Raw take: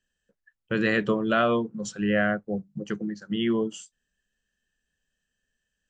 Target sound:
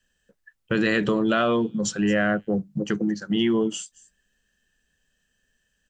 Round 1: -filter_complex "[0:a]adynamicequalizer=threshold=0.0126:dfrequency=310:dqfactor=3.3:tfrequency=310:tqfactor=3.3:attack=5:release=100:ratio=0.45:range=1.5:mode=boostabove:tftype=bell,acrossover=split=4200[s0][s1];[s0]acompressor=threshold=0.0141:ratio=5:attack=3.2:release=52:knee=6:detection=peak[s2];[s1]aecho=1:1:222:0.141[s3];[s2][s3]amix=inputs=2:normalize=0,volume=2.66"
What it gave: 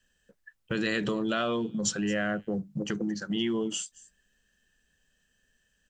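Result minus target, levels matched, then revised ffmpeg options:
compression: peak gain reduction +7.5 dB
-filter_complex "[0:a]adynamicequalizer=threshold=0.0126:dfrequency=310:dqfactor=3.3:tfrequency=310:tqfactor=3.3:attack=5:release=100:ratio=0.45:range=1.5:mode=boostabove:tftype=bell,acrossover=split=4200[s0][s1];[s0]acompressor=threshold=0.0422:ratio=5:attack=3.2:release=52:knee=6:detection=peak[s2];[s1]aecho=1:1:222:0.141[s3];[s2][s3]amix=inputs=2:normalize=0,volume=2.66"

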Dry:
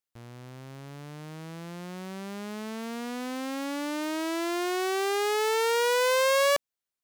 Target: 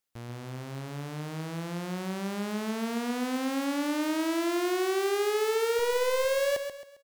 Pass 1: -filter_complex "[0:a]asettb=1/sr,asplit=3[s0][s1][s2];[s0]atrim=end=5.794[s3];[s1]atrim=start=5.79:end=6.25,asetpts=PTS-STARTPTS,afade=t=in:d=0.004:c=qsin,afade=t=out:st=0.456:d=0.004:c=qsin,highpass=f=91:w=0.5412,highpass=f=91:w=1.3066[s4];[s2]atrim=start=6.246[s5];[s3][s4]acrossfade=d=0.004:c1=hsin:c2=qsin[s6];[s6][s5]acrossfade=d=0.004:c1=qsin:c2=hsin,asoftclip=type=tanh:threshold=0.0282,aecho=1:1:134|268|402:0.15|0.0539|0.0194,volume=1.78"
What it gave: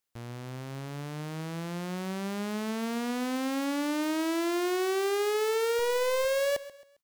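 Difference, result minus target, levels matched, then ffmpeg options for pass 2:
echo-to-direct -8.5 dB
-filter_complex "[0:a]asettb=1/sr,asplit=3[s0][s1][s2];[s0]atrim=end=5.794[s3];[s1]atrim=start=5.79:end=6.25,asetpts=PTS-STARTPTS,afade=t=in:d=0.004:c=qsin,afade=t=out:st=0.456:d=0.004:c=qsin,highpass=f=91:w=0.5412,highpass=f=91:w=1.3066[s4];[s2]atrim=start=6.246[s5];[s3][s4]acrossfade=d=0.004:c1=hsin:c2=qsin[s6];[s6][s5]acrossfade=d=0.004:c1=qsin:c2=hsin,asoftclip=type=tanh:threshold=0.0282,aecho=1:1:134|268|402|536:0.398|0.143|0.0516|0.0186,volume=1.78"

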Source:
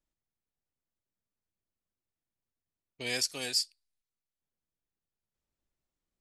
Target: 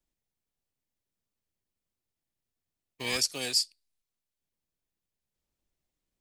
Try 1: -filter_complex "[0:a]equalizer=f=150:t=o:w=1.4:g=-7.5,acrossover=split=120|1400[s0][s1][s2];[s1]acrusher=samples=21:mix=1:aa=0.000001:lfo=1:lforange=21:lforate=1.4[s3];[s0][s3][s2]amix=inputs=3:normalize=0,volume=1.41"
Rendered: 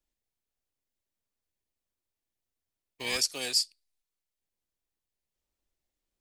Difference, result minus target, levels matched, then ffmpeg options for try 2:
125 Hz band -5.5 dB
-filter_complex "[0:a]acrossover=split=120|1400[s0][s1][s2];[s1]acrusher=samples=21:mix=1:aa=0.000001:lfo=1:lforange=21:lforate=1.4[s3];[s0][s3][s2]amix=inputs=3:normalize=0,volume=1.41"

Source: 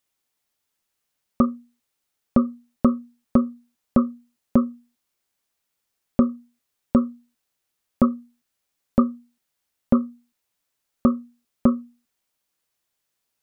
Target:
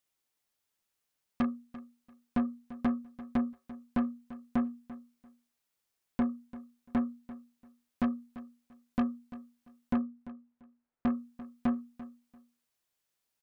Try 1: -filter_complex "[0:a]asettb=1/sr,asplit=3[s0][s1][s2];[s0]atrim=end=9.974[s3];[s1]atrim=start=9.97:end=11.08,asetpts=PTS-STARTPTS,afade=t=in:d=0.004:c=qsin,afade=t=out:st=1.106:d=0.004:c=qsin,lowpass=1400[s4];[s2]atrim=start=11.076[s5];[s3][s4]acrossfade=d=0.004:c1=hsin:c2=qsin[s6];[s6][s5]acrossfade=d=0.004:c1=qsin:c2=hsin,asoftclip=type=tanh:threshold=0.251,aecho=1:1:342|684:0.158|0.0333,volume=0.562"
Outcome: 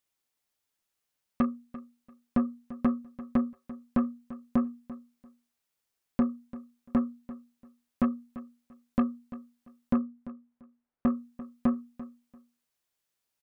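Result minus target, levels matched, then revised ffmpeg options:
saturation: distortion -6 dB
-filter_complex "[0:a]asettb=1/sr,asplit=3[s0][s1][s2];[s0]atrim=end=9.974[s3];[s1]atrim=start=9.97:end=11.08,asetpts=PTS-STARTPTS,afade=t=in:d=0.004:c=qsin,afade=t=out:st=1.106:d=0.004:c=qsin,lowpass=1400[s4];[s2]atrim=start=11.076[s5];[s3][s4]acrossfade=d=0.004:c1=hsin:c2=qsin[s6];[s6][s5]acrossfade=d=0.004:c1=qsin:c2=hsin,asoftclip=type=tanh:threshold=0.119,aecho=1:1:342|684:0.158|0.0333,volume=0.562"

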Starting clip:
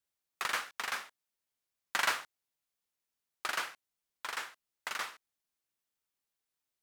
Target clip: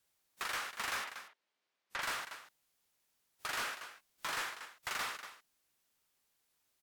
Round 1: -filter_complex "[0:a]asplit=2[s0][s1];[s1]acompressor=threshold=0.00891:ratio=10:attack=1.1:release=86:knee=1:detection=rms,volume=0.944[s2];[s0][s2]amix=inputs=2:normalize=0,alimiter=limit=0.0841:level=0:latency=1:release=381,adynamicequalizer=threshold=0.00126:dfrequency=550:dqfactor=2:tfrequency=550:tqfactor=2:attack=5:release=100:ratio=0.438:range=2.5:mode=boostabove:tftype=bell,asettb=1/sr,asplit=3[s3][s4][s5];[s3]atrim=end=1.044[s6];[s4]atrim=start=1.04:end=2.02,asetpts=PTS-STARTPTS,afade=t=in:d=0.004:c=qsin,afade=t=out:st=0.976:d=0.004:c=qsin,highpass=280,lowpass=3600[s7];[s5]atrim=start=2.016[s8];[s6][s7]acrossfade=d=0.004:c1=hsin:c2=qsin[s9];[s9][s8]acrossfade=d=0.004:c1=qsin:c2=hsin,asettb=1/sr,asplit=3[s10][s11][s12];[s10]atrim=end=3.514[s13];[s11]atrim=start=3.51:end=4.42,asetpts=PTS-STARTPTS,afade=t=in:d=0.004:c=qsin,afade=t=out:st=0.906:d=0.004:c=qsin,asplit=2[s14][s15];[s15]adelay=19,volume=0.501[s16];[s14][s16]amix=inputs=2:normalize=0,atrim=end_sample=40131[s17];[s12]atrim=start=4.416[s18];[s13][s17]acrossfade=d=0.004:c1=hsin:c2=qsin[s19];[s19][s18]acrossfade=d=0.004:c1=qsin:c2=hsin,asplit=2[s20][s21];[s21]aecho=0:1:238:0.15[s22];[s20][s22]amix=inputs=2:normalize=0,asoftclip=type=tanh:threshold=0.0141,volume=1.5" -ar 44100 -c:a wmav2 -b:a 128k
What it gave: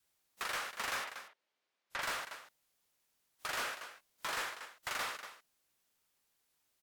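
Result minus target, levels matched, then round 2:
500 Hz band +3.0 dB
-filter_complex "[0:a]asplit=2[s0][s1];[s1]acompressor=threshold=0.00891:ratio=10:attack=1.1:release=86:knee=1:detection=rms,volume=0.944[s2];[s0][s2]amix=inputs=2:normalize=0,alimiter=limit=0.0841:level=0:latency=1:release=381,asettb=1/sr,asplit=3[s3][s4][s5];[s3]atrim=end=1.044[s6];[s4]atrim=start=1.04:end=2.02,asetpts=PTS-STARTPTS,afade=t=in:d=0.004:c=qsin,afade=t=out:st=0.976:d=0.004:c=qsin,highpass=280,lowpass=3600[s7];[s5]atrim=start=2.016[s8];[s6][s7]acrossfade=d=0.004:c1=hsin:c2=qsin[s9];[s9][s8]acrossfade=d=0.004:c1=qsin:c2=hsin,asettb=1/sr,asplit=3[s10][s11][s12];[s10]atrim=end=3.514[s13];[s11]atrim=start=3.51:end=4.42,asetpts=PTS-STARTPTS,afade=t=in:d=0.004:c=qsin,afade=t=out:st=0.906:d=0.004:c=qsin,asplit=2[s14][s15];[s15]adelay=19,volume=0.501[s16];[s14][s16]amix=inputs=2:normalize=0,atrim=end_sample=40131[s17];[s12]atrim=start=4.416[s18];[s13][s17]acrossfade=d=0.004:c1=hsin:c2=qsin[s19];[s19][s18]acrossfade=d=0.004:c1=qsin:c2=hsin,asplit=2[s20][s21];[s21]aecho=0:1:238:0.15[s22];[s20][s22]amix=inputs=2:normalize=0,asoftclip=type=tanh:threshold=0.0141,volume=1.5" -ar 44100 -c:a wmav2 -b:a 128k

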